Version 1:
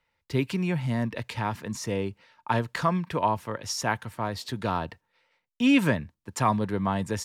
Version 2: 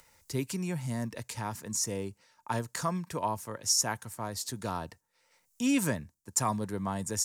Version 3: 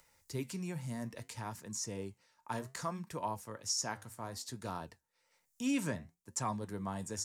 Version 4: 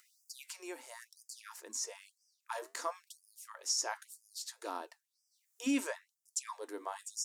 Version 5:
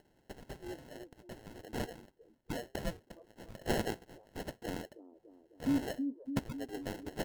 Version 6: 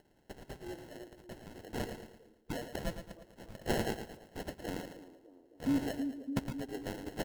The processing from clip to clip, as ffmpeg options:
-af "acompressor=mode=upward:threshold=-42dB:ratio=2.5,highshelf=f=4.8k:t=q:w=1.5:g=13.5,volume=-6.5dB"
-filter_complex "[0:a]acrossover=split=7900[a][b];[b]acompressor=threshold=-47dB:ratio=6[c];[a][c]amix=inputs=2:normalize=0,flanger=delay=5.1:depth=9.7:regen=-75:speed=0.62:shape=triangular,volume=-2dB"
-af "afftfilt=real='re*gte(b*sr/1024,220*pow(4900/220,0.5+0.5*sin(2*PI*1*pts/sr)))':imag='im*gte(b*sr/1024,220*pow(4900/220,0.5+0.5*sin(2*PI*1*pts/sr)))':win_size=1024:overlap=0.75,volume=1.5dB"
-filter_complex "[0:a]acrossover=split=400[a][b];[a]aecho=1:1:320|608|867.2|1100|1310:0.631|0.398|0.251|0.158|0.1[c];[b]acrusher=samples=37:mix=1:aa=0.000001[d];[c][d]amix=inputs=2:normalize=0,volume=1.5dB"
-af "aecho=1:1:112|224|336|448|560:0.335|0.144|0.0619|0.0266|0.0115"

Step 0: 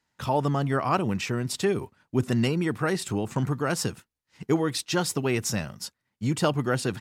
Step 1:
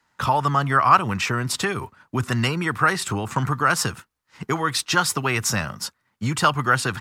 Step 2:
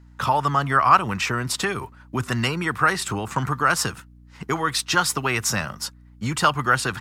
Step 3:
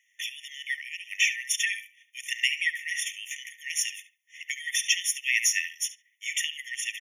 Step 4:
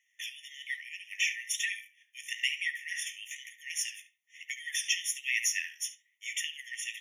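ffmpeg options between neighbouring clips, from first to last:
-filter_complex "[0:a]equalizer=f=1.2k:t=o:w=1.1:g=9,acrossover=split=130|900|2800[a][b][c][d];[b]acompressor=threshold=-33dB:ratio=6[e];[a][e][c][d]amix=inputs=4:normalize=0,volume=6dB"
-af "lowshelf=f=170:g=-4,aeval=exprs='val(0)+0.00447*(sin(2*PI*60*n/s)+sin(2*PI*2*60*n/s)/2+sin(2*PI*3*60*n/s)/3+sin(2*PI*4*60*n/s)/4+sin(2*PI*5*60*n/s)/5)':c=same"
-filter_complex "[0:a]asplit=2[a][b];[b]adelay=71,lowpass=f=2.3k:p=1,volume=-8dB,asplit=2[c][d];[d]adelay=71,lowpass=f=2.3k:p=1,volume=0.25,asplit=2[e][f];[f]adelay=71,lowpass=f=2.3k:p=1,volume=0.25[g];[a][c][e][g]amix=inputs=4:normalize=0,acompressor=threshold=-21dB:ratio=6,afftfilt=real='re*eq(mod(floor(b*sr/1024/1800),2),1)':imag='im*eq(mod(floor(b*sr/1024/1800),2),1)':win_size=1024:overlap=0.75,volume=5dB"
-af "flanger=delay=9.9:depth=8.9:regen=-50:speed=1.1:shape=sinusoidal,volume=-1.5dB"

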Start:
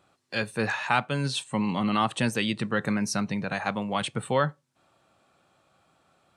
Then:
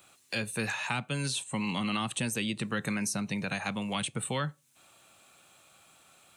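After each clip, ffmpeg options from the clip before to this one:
-filter_complex "[0:a]crystalizer=i=6.5:c=0,superequalizer=12b=1.41:14b=0.631,acrossover=split=310|1000[a][b][c];[a]acompressor=threshold=-31dB:ratio=4[d];[b]acompressor=threshold=-40dB:ratio=4[e];[c]acompressor=threshold=-34dB:ratio=4[f];[d][e][f]amix=inputs=3:normalize=0,volume=-1dB"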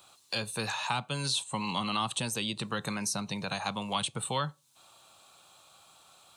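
-af "equalizer=f=250:t=o:w=1:g=-4,equalizer=f=1k:t=o:w=1:g=8,equalizer=f=2k:t=o:w=1:g=-8,equalizer=f=4k:t=o:w=1:g=8,volume=-1dB"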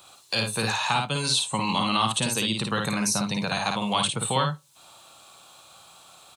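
-af "aecho=1:1:54|73:0.631|0.158,volume=6dB"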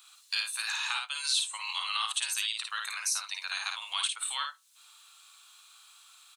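-af "highpass=f=1.3k:w=0.5412,highpass=f=1.3k:w=1.3066,volume=-4dB"

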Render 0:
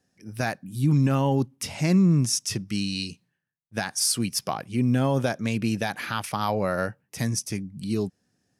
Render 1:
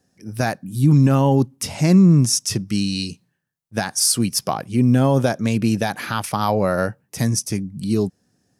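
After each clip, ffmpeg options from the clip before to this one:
-af "equalizer=f=2.4k:w=0.83:g=-5,volume=7dB"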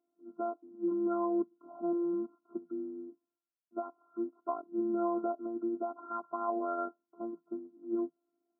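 -af "afftfilt=real='hypot(re,im)*cos(PI*b)':imag='0':win_size=512:overlap=0.75,afftfilt=real='re*between(b*sr/4096,170,1400)':imag='im*between(b*sr/4096,170,1400)':win_size=4096:overlap=0.75,volume=-9dB"

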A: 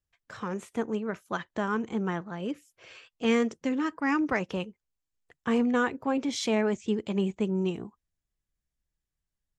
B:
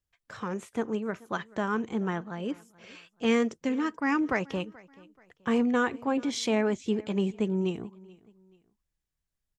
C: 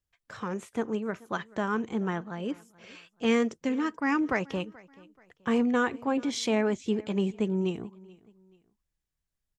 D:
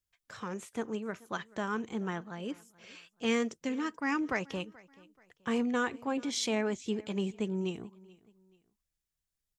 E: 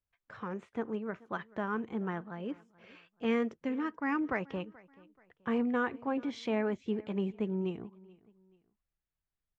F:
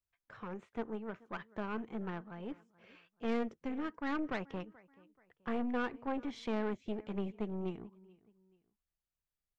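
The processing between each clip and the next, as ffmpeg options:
-af "aecho=1:1:431|862:0.0708|0.0255"
-af anull
-af "highshelf=f=2.8k:g=7.5,volume=-5.5dB"
-af "lowpass=2k"
-af "aeval=exprs='(tanh(25.1*val(0)+0.75)-tanh(0.75))/25.1':c=same"

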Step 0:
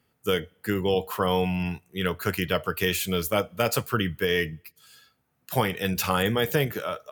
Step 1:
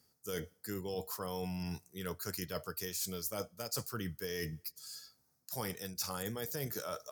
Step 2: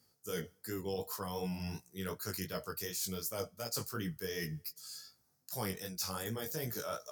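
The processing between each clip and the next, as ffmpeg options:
-af "highshelf=f=3.9k:t=q:w=3:g=10,areverse,acompressor=threshold=-31dB:ratio=6,areverse,volume=-5.5dB"
-af "flanger=delay=17:depth=4:speed=2.7,volume=3.5dB"

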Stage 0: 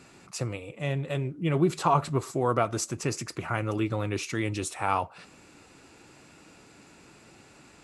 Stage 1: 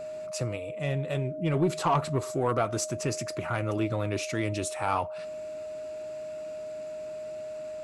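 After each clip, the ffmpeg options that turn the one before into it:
-af "asoftclip=type=tanh:threshold=-16.5dB,aeval=exprs='val(0)+0.0178*sin(2*PI*620*n/s)':c=same"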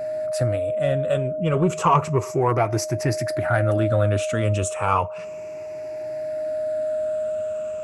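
-af "afftfilt=real='re*pow(10,10/40*sin(2*PI*(0.77*log(max(b,1)*sr/1024/100)/log(2)-(-0.32)*(pts-256)/sr)))':imag='im*pow(10,10/40*sin(2*PI*(0.77*log(max(b,1)*sr/1024/100)/log(2)-(-0.32)*(pts-256)/sr)))':win_size=1024:overlap=0.75,equalizer=f=100:t=o:w=0.67:g=7,equalizer=f=630:t=o:w=0.67:g=5,equalizer=f=1.6k:t=o:w=0.67:g=4,equalizer=f=4k:t=o:w=0.67:g=-6,volume=3.5dB"

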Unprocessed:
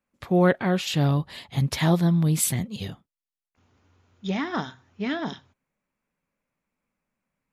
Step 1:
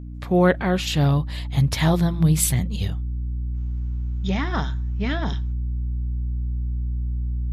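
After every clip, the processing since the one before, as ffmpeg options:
-af "aeval=exprs='val(0)+0.0158*(sin(2*PI*60*n/s)+sin(2*PI*2*60*n/s)/2+sin(2*PI*3*60*n/s)/3+sin(2*PI*4*60*n/s)/4+sin(2*PI*5*60*n/s)/5)':c=same,asubboost=boost=4.5:cutoff=120,bandreject=f=170.1:t=h:w=4,bandreject=f=340.2:t=h:w=4,volume=2.5dB"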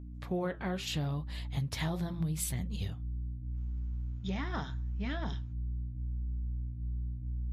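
-af "flanger=delay=3.2:depth=7.9:regen=-71:speed=0.79:shape=triangular,acompressor=threshold=-24dB:ratio=12,volume=-5.5dB"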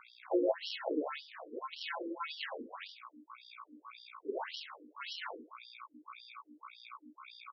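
-af "acrusher=samples=37:mix=1:aa=0.000001,aecho=1:1:69|138|207|276:0.251|0.0904|0.0326|0.0117,afftfilt=real='re*between(b*sr/1024,350*pow(4100/350,0.5+0.5*sin(2*PI*1.8*pts/sr))/1.41,350*pow(4100/350,0.5+0.5*sin(2*PI*1.8*pts/sr))*1.41)':imag='im*between(b*sr/1024,350*pow(4100/350,0.5+0.5*sin(2*PI*1.8*pts/sr))/1.41,350*pow(4100/350,0.5+0.5*sin(2*PI*1.8*pts/sr))*1.41)':win_size=1024:overlap=0.75,volume=8.5dB"

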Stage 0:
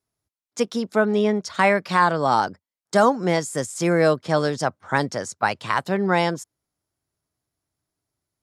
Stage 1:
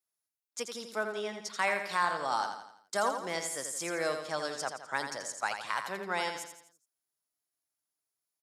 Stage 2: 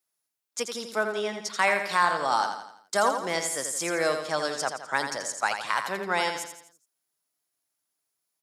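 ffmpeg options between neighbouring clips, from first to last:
-filter_complex "[0:a]highpass=f=1k:p=1,highshelf=f=8.5k:g=10,asplit=2[a][b];[b]aecho=0:1:84|168|252|336|420:0.447|0.205|0.0945|0.0435|0.02[c];[a][c]amix=inputs=2:normalize=0,volume=-9dB"
-af "highpass=97,volume=6.5dB"

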